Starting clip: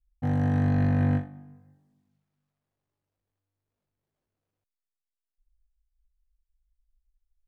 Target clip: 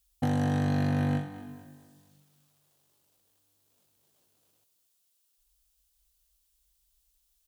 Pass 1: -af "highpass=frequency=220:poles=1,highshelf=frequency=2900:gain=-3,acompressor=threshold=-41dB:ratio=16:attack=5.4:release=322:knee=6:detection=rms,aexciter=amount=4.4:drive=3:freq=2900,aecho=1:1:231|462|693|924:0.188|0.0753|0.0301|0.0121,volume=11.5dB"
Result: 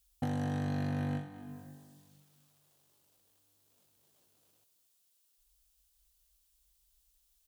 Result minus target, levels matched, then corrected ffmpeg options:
downward compressor: peak gain reduction +7 dB
-af "highpass=frequency=220:poles=1,highshelf=frequency=2900:gain=-3,acompressor=threshold=-33.5dB:ratio=16:attack=5.4:release=322:knee=6:detection=rms,aexciter=amount=4.4:drive=3:freq=2900,aecho=1:1:231|462|693|924:0.188|0.0753|0.0301|0.0121,volume=11.5dB"

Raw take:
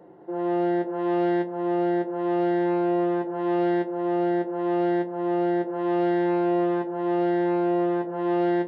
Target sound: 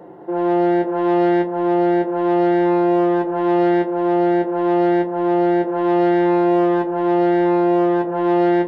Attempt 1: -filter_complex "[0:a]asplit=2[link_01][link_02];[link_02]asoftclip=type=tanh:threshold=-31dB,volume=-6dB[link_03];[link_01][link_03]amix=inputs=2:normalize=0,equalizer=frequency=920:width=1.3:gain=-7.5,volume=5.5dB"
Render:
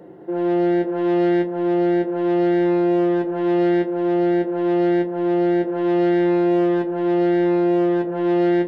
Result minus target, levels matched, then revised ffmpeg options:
1,000 Hz band −5.5 dB
-filter_complex "[0:a]asplit=2[link_01][link_02];[link_02]asoftclip=type=tanh:threshold=-31dB,volume=-6dB[link_03];[link_01][link_03]amix=inputs=2:normalize=0,equalizer=frequency=920:width=1.3:gain=2.5,volume=5.5dB"

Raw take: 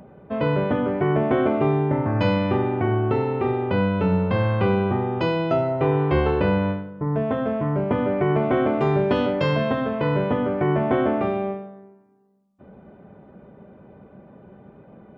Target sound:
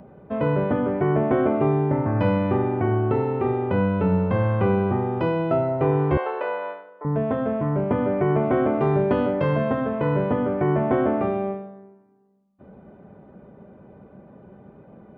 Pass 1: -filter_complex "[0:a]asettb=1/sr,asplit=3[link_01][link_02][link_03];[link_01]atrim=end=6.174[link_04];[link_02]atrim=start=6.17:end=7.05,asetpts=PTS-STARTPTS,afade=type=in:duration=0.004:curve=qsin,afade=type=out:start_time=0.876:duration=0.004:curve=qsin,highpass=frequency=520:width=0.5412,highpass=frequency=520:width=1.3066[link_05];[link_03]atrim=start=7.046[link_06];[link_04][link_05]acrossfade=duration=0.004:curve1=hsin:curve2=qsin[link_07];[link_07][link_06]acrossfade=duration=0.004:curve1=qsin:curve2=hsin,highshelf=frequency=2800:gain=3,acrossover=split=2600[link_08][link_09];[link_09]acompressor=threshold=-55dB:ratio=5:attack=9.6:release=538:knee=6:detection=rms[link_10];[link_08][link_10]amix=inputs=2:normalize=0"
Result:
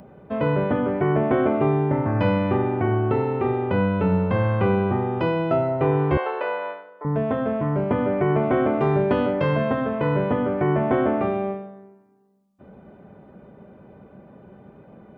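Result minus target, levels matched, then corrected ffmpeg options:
4,000 Hz band +4.0 dB
-filter_complex "[0:a]asettb=1/sr,asplit=3[link_01][link_02][link_03];[link_01]atrim=end=6.174[link_04];[link_02]atrim=start=6.17:end=7.05,asetpts=PTS-STARTPTS,afade=type=in:duration=0.004:curve=qsin,afade=type=out:start_time=0.876:duration=0.004:curve=qsin,highpass=frequency=520:width=0.5412,highpass=frequency=520:width=1.3066[link_05];[link_03]atrim=start=7.046[link_06];[link_04][link_05]acrossfade=duration=0.004:curve1=hsin:curve2=qsin[link_07];[link_07][link_06]acrossfade=duration=0.004:curve1=qsin:curve2=hsin,highshelf=frequency=2800:gain=-7,acrossover=split=2600[link_08][link_09];[link_09]acompressor=threshold=-55dB:ratio=5:attack=9.6:release=538:knee=6:detection=rms[link_10];[link_08][link_10]amix=inputs=2:normalize=0"

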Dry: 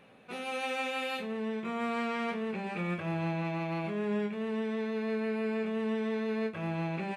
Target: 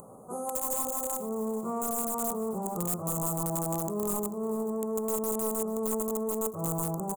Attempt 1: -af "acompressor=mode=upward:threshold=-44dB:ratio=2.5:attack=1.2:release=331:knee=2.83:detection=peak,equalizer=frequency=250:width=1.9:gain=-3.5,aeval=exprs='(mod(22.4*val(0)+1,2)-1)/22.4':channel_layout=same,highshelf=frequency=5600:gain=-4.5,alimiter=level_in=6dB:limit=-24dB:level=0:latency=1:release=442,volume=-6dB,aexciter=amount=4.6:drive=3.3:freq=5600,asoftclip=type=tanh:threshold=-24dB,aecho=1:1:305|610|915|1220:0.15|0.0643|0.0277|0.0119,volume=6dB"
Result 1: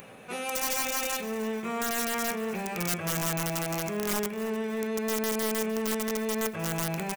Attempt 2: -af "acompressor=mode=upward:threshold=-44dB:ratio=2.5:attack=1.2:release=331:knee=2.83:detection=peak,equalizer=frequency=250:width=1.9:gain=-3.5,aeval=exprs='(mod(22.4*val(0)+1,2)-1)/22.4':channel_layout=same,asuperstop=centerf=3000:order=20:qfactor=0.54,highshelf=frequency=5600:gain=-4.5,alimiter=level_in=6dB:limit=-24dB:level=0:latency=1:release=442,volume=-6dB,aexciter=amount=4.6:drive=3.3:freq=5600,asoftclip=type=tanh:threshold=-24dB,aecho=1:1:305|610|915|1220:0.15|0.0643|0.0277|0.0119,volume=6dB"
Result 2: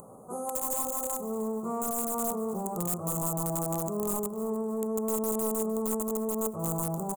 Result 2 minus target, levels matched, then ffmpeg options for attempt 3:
echo 134 ms early
-af "acompressor=mode=upward:threshold=-44dB:ratio=2.5:attack=1.2:release=331:knee=2.83:detection=peak,equalizer=frequency=250:width=1.9:gain=-3.5,aeval=exprs='(mod(22.4*val(0)+1,2)-1)/22.4':channel_layout=same,asuperstop=centerf=3000:order=20:qfactor=0.54,highshelf=frequency=5600:gain=-4.5,alimiter=level_in=6dB:limit=-24dB:level=0:latency=1:release=442,volume=-6dB,aexciter=amount=4.6:drive=3.3:freq=5600,asoftclip=type=tanh:threshold=-24dB,aecho=1:1:439|878|1317|1756:0.15|0.0643|0.0277|0.0119,volume=6dB"

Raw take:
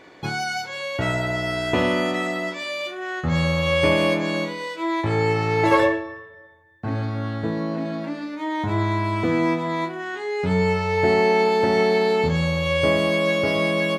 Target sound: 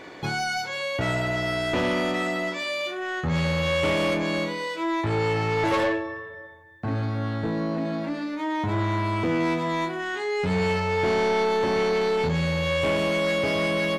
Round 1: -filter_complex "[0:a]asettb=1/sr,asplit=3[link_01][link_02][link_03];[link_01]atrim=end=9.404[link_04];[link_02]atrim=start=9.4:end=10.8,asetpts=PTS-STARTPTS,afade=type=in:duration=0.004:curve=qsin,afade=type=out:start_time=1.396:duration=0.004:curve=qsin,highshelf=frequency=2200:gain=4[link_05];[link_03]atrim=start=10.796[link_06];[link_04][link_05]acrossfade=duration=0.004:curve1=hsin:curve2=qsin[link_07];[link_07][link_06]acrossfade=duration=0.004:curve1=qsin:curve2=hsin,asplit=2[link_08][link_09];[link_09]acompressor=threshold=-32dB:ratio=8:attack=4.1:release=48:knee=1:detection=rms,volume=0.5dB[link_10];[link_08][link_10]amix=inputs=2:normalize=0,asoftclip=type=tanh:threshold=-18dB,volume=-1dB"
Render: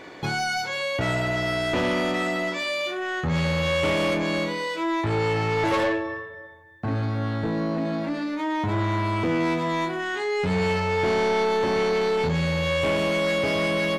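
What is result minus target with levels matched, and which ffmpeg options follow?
downward compressor: peak gain reduction −7.5 dB
-filter_complex "[0:a]asettb=1/sr,asplit=3[link_01][link_02][link_03];[link_01]atrim=end=9.404[link_04];[link_02]atrim=start=9.4:end=10.8,asetpts=PTS-STARTPTS,afade=type=in:duration=0.004:curve=qsin,afade=type=out:start_time=1.396:duration=0.004:curve=qsin,highshelf=frequency=2200:gain=4[link_05];[link_03]atrim=start=10.796[link_06];[link_04][link_05]acrossfade=duration=0.004:curve1=hsin:curve2=qsin[link_07];[link_07][link_06]acrossfade=duration=0.004:curve1=qsin:curve2=hsin,asplit=2[link_08][link_09];[link_09]acompressor=threshold=-40.5dB:ratio=8:attack=4.1:release=48:knee=1:detection=rms,volume=0.5dB[link_10];[link_08][link_10]amix=inputs=2:normalize=0,asoftclip=type=tanh:threshold=-18dB,volume=-1dB"

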